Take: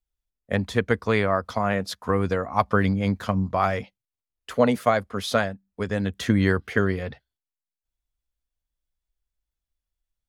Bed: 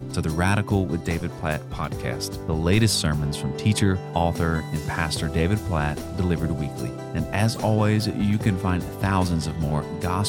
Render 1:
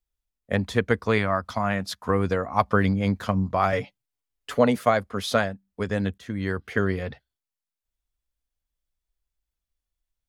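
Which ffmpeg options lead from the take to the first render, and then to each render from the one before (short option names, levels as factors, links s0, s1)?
-filter_complex "[0:a]asettb=1/sr,asplit=3[s0][s1][s2];[s0]atrim=end=1.184[s3];[s1]atrim=start=1.18:end=2.03,asetpts=PTS-STARTPTS,afade=t=in:d=0.004:c=qsin,afade=t=out:st=0.846:d=0.004:c=qsin,equalizer=f=450:w=2.5:g=-9.5[s4];[s2]atrim=start=2.026[s5];[s3][s4]acrossfade=d=0.004:c1=hsin:c2=qsin[s6];[s6][s5]acrossfade=d=0.004:c1=qsin:c2=hsin,asettb=1/sr,asplit=3[s7][s8][s9];[s7]atrim=end=3.724[s10];[s8]atrim=start=3.72:end=4.59,asetpts=PTS-STARTPTS,afade=t=in:d=0.004:c=qsin,afade=t=out:st=0.866:d=0.004:c=qsin,aecho=1:1:7:0.86,atrim=end_sample=38367[s11];[s9]atrim=start=4.586[s12];[s10][s11]acrossfade=d=0.004:c1=hsin:c2=qsin[s13];[s13][s12]acrossfade=d=0.004:c1=qsin:c2=hsin,asplit=2[s14][s15];[s14]atrim=end=6.18,asetpts=PTS-STARTPTS,afade=t=out:st=6.176:d=0.004:c=hsin:silence=0.125893[s16];[s15]atrim=start=6.18,asetpts=PTS-STARTPTS,afade=t=in:d=0.8:silence=0.125893[s17];[s16][s17]concat=n=2:v=0:a=1"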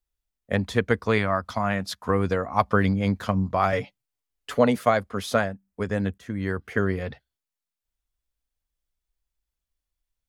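-filter_complex "[0:a]asettb=1/sr,asplit=3[s0][s1][s2];[s0]atrim=end=5.234[s3];[s1]atrim=start=5.23:end=7.01,asetpts=PTS-STARTPTS,afade=t=in:d=0.004:c=qsin,afade=t=out:st=1.776:d=0.004:c=qsin,equalizer=f=3800:t=o:w=1:g=-5.5[s4];[s2]atrim=start=7.006[s5];[s3][s4]acrossfade=d=0.004:c1=hsin:c2=qsin[s6];[s6][s5]acrossfade=d=0.004:c1=qsin:c2=hsin"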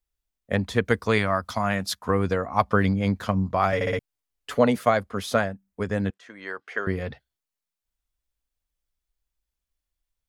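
-filter_complex "[0:a]asettb=1/sr,asplit=3[s0][s1][s2];[s0]atrim=end=0.854[s3];[s1]atrim=start=0.85:end=1.99,asetpts=PTS-STARTPTS,afade=t=in:d=0.004:c=qsin,afade=t=out:st=1.136:d=0.004:c=qsin,highshelf=f=4600:g=8[s4];[s2]atrim=start=1.986[s5];[s3][s4]acrossfade=d=0.004:c1=hsin:c2=qsin[s6];[s6][s5]acrossfade=d=0.004:c1=qsin:c2=hsin,asettb=1/sr,asplit=3[s7][s8][s9];[s7]atrim=end=6.104[s10];[s8]atrim=start=6.1:end=6.87,asetpts=PTS-STARTPTS,afade=t=in:d=0.004:c=qsin,afade=t=out:st=0.766:d=0.004:c=qsin,highpass=610,lowpass=6200[s11];[s9]atrim=start=6.866[s12];[s10][s11]acrossfade=d=0.004:c1=hsin:c2=qsin[s13];[s13][s12]acrossfade=d=0.004:c1=qsin:c2=hsin,asplit=5[s14][s15][s16][s17][s18];[s14]atrim=end=3.812[s19];[s15]atrim=start=3.748:end=3.812[s20];[s16]atrim=start=3.748:end=3.812[s21];[s17]atrim=start=3.748:end=3.812[s22];[s18]atrim=start=3.988[s23];[s19][s20]acrossfade=d=0.004:c1=hsin:c2=hsin[s24];[s24][s21]acrossfade=d=0.004:c1=hsin:c2=hsin[s25];[s25][s22]acrossfade=d=0.004:c1=hsin:c2=hsin[s26];[s26][s23]acrossfade=d=0.004:c1=hsin:c2=hsin"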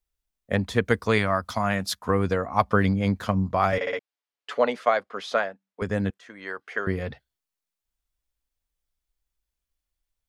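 -filter_complex "[0:a]asettb=1/sr,asplit=3[s0][s1][s2];[s0]atrim=end=3.784[s3];[s1]atrim=start=3.78:end=5.82,asetpts=PTS-STARTPTS,afade=t=in:d=0.004:c=qsin,afade=t=out:st=2.036:d=0.004:c=qsin,highpass=450,lowpass=4700[s4];[s2]atrim=start=5.816[s5];[s3][s4]acrossfade=d=0.004:c1=hsin:c2=qsin[s6];[s6][s5]acrossfade=d=0.004:c1=qsin:c2=hsin"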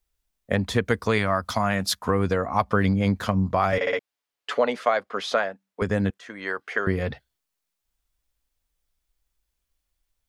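-filter_complex "[0:a]asplit=2[s0][s1];[s1]alimiter=limit=0.178:level=0:latency=1:release=147,volume=0.891[s2];[s0][s2]amix=inputs=2:normalize=0,acompressor=threshold=0.0708:ratio=1.5"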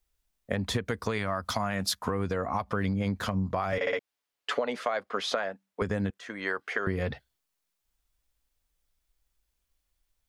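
-af "alimiter=limit=0.224:level=0:latency=1:release=127,acompressor=threshold=0.0562:ratio=6"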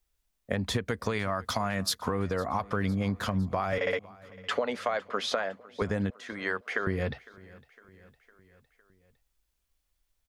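-af "aecho=1:1:507|1014|1521|2028:0.0794|0.0469|0.0277|0.0163"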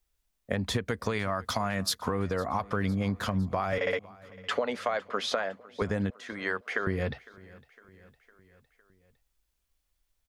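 -af anull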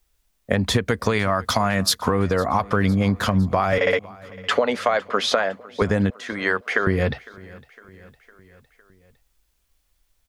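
-af "volume=2.99"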